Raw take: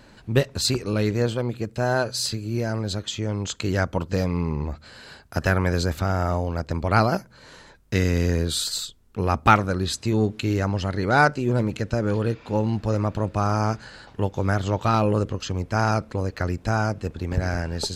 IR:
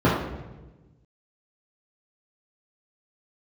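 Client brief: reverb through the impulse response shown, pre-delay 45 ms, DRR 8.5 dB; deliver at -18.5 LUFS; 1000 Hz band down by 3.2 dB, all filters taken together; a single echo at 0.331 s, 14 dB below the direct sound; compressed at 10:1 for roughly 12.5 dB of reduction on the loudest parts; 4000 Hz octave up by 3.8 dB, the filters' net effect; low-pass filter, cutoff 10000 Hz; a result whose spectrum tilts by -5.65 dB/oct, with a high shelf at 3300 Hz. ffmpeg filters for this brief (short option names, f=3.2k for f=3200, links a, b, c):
-filter_complex "[0:a]lowpass=10k,equalizer=f=1k:t=o:g=-4.5,highshelf=f=3.3k:g=-5,equalizer=f=4k:t=o:g=8,acompressor=threshold=-26dB:ratio=10,aecho=1:1:331:0.2,asplit=2[a][b];[1:a]atrim=start_sample=2205,adelay=45[c];[b][c]afir=irnorm=-1:irlink=0,volume=-29dB[d];[a][d]amix=inputs=2:normalize=0,volume=10.5dB"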